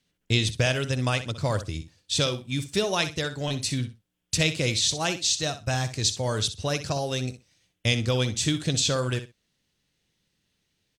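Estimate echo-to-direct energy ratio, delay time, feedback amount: −12.0 dB, 63 ms, 17%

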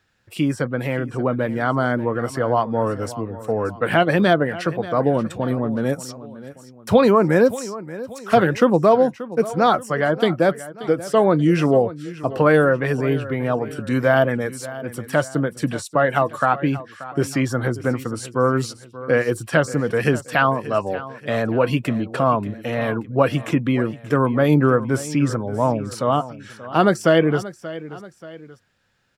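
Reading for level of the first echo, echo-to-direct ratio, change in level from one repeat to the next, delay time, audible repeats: −16.0 dB, −15.0 dB, −7.0 dB, 582 ms, 2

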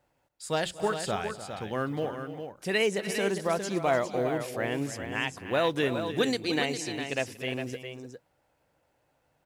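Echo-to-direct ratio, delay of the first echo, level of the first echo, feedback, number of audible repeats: −6.5 dB, 236 ms, −20.0 dB, repeats not evenly spaced, 3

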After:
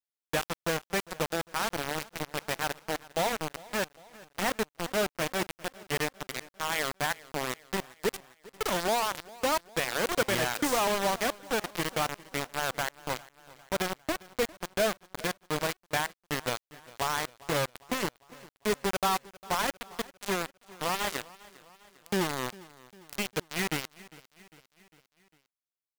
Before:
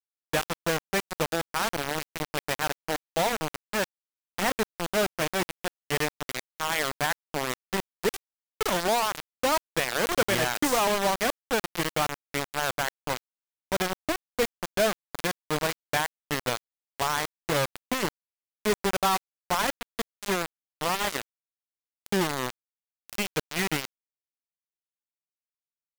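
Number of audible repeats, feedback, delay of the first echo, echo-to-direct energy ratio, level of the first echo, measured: 3, 56%, 402 ms, −19.5 dB, −21.0 dB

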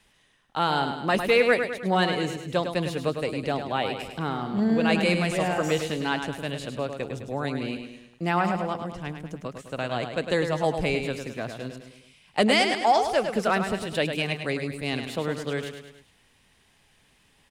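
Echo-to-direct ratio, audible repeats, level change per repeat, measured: −6.0 dB, 4, −6.0 dB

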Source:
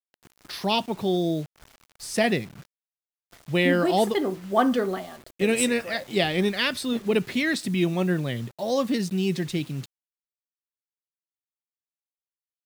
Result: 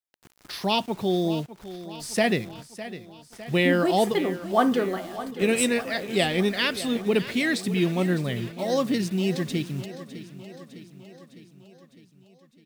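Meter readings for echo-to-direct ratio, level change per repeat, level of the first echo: −12.5 dB, −4.5 dB, −14.5 dB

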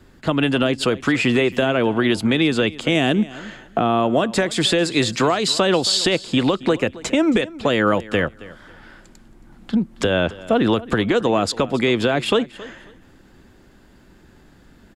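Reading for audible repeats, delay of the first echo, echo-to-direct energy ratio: 2, 272 ms, −19.0 dB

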